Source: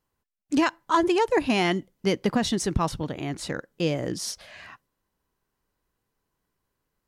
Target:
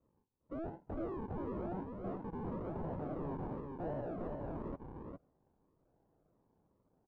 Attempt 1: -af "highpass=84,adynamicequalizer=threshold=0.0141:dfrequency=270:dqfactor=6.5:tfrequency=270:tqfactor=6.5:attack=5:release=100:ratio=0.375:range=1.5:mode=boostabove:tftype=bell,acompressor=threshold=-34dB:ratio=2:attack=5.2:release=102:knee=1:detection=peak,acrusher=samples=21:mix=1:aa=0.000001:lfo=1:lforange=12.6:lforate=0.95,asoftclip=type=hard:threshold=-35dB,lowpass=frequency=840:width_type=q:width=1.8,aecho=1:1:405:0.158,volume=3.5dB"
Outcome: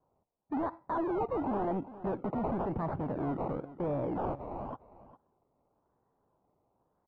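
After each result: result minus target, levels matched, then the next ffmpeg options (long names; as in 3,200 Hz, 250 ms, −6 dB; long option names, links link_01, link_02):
echo-to-direct −12 dB; sample-and-hold swept by an LFO: distortion −11 dB; hard clipping: distortion −4 dB
-af "highpass=84,adynamicequalizer=threshold=0.0141:dfrequency=270:dqfactor=6.5:tfrequency=270:tqfactor=6.5:attack=5:release=100:ratio=0.375:range=1.5:mode=boostabove:tftype=bell,acompressor=threshold=-34dB:ratio=2:attack=5.2:release=102:knee=1:detection=peak,acrusher=samples=21:mix=1:aa=0.000001:lfo=1:lforange=12.6:lforate=0.95,asoftclip=type=hard:threshold=-35dB,lowpass=frequency=840:width_type=q:width=1.8,aecho=1:1:405:0.631,volume=3.5dB"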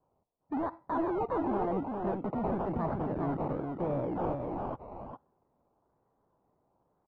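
sample-and-hold swept by an LFO: distortion −11 dB; hard clipping: distortion −4 dB
-af "highpass=84,adynamicequalizer=threshold=0.0141:dfrequency=270:dqfactor=6.5:tfrequency=270:tqfactor=6.5:attack=5:release=100:ratio=0.375:range=1.5:mode=boostabove:tftype=bell,acompressor=threshold=-34dB:ratio=2:attack=5.2:release=102:knee=1:detection=peak,acrusher=samples=53:mix=1:aa=0.000001:lfo=1:lforange=31.8:lforate=0.95,asoftclip=type=hard:threshold=-35dB,lowpass=frequency=840:width_type=q:width=1.8,aecho=1:1:405:0.631,volume=3.5dB"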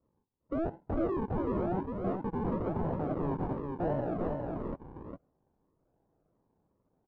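hard clipping: distortion −4 dB
-af "highpass=84,adynamicequalizer=threshold=0.0141:dfrequency=270:dqfactor=6.5:tfrequency=270:tqfactor=6.5:attack=5:release=100:ratio=0.375:range=1.5:mode=boostabove:tftype=bell,acompressor=threshold=-34dB:ratio=2:attack=5.2:release=102:knee=1:detection=peak,acrusher=samples=53:mix=1:aa=0.000001:lfo=1:lforange=31.8:lforate=0.95,asoftclip=type=hard:threshold=-45dB,lowpass=frequency=840:width_type=q:width=1.8,aecho=1:1:405:0.631,volume=3.5dB"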